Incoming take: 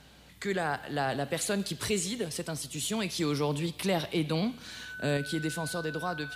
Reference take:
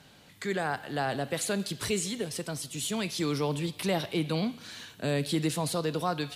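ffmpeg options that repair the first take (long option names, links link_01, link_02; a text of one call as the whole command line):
ffmpeg -i in.wav -af "bandreject=frequency=61.4:width_type=h:width=4,bandreject=frequency=122.8:width_type=h:width=4,bandreject=frequency=184.2:width_type=h:width=4,bandreject=frequency=245.6:width_type=h:width=4,bandreject=frequency=1500:width=30,asetnsamples=nb_out_samples=441:pad=0,asendcmd='5.17 volume volume 4dB',volume=0dB" out.wav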